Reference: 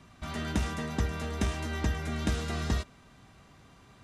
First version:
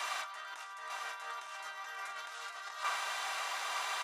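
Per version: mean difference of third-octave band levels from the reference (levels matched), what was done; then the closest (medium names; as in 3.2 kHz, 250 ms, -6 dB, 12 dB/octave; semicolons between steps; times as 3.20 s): 18.0 dB: high-pass 750 Hz 24 dB/octave; dynamic bell 1.2 kHz, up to +8 dB, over -56 dBFS, Q 1.7; compressor with a negative ratio -53 dBFS, ratio -1; on a send: delay 899 ms -7 dB; on the sum: trim +10.5 dB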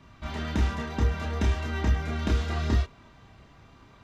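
3.0 dB: peaking EQ 9.6 kHz -14.5 dB 0.85 oct; band-stop 750 Hz, Q 15; chorus voices 6, 0.68 Hz, delay 29 ms, depth 2.2 ms; peaking EQ 840 Hz +2.5 dB 0.52 oct; trim +5.5 dB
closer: second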